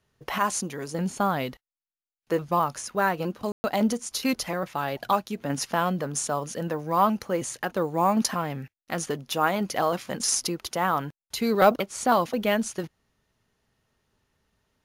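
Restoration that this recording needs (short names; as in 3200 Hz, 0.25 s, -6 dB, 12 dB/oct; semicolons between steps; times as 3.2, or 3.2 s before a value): room tone fill 3.52–3.64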